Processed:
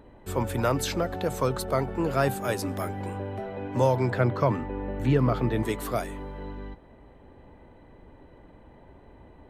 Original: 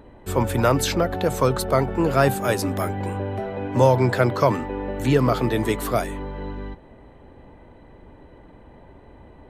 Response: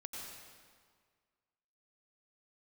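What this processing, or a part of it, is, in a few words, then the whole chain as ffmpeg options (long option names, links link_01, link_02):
ducked reverb: -filter_complex "[0:a]asplit=3[link_01][link_02][link_03];[1:a]atrim=start_sample=2205[link_04];[link_02][link_04]afir=irnorm=-1:irlink=0[link_05];[link_03]apad=whole_len=418626[link_06];[link_05][link_06]sidechaincompress=threshold=-34dB:ratio=8:attack=5.1:release=968,volume=-6.5dB[link_07];[link_01][link_07]amix=inputs=2:normalize=0,asettb=1/sr,asplit=3[link_08][link_09][link_10];[link_08]atrim=end=4.104[link_11];[link_09]atrim=start=4.1:end=5.63,asetpts=PTS-STARTPTS,afade=type=in:duration=0.004:curve=qsin,afade=type=out:start_time=1.526:duration=0.004:curve=qsin,bass=frequency=250:gain=5,treble=frequency=4000:gain=-10[link_12];[link_10]atrim=start=5.626[link_13];[link_11][link_12]acrossfade=duration=0.004:curve1=hsin:curve2=qsin[link_14];[link_14][link_13]acrossfade=duration=0.004:curve1=qsin:curve2=hsin,volume=-6.5dB"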